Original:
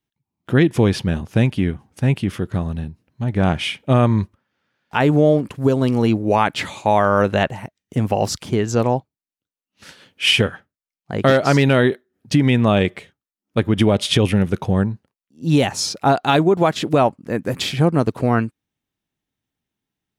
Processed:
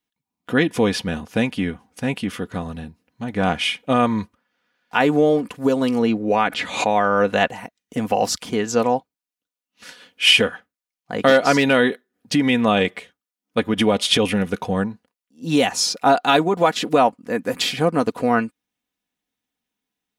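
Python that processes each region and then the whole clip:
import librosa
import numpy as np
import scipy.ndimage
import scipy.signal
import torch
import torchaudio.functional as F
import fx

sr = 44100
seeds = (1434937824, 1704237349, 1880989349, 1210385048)

y = fx.chain(x, sr, fx.lowpass(hz=3000.0, slope=6),
    fx.peak_eq(hz=960.0, db=-4.0, octaves=0.92),
    fx.pre_swell(db_per_s=90.0), at=(5.99, 7.28))
y = fx.low_shelf(y, sr, hz=240.0, db=-11.0)
y = y + 0.52 * np.pad(y, (int(4.1 * sr / 1000.0), 0))[:len(y)]
y = F.gain(torch.from_numpy(y), 1.0).numpy()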